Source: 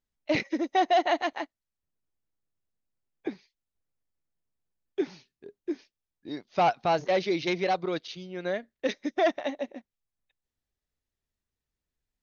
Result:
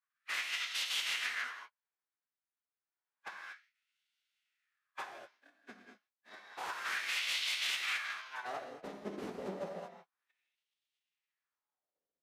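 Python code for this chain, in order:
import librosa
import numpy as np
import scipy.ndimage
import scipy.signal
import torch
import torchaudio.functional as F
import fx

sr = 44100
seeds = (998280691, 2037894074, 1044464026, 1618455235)

y = fx.envelope_flatten(x, sr, power=0.3)
y = fx.filter_sweep_highpass(y, sr, from_hz=1500.0, to_hz=60.0, start_s=8.06, end_s=11.61, q=1.6)
y = (np.mod(10.0 ** (24.5 / 20.0) * y + 1.0, 2.0) - 1.0) / 10.0 ** (24.5 / 20.0)
y = fx.rev_gated(y, sr, seeds[0], gate_ms=260, shape='flat', drr_db=1.5)
y = fx.wah_lfo(y, sr, hz=0.3, low_hz=300.0, high_hz=3200.0, q=2.3)
y = fx.pitch_keep_formants(y, sr, semitones=-6.0)
y = y * 10.0 ** (3.5 / 20.0)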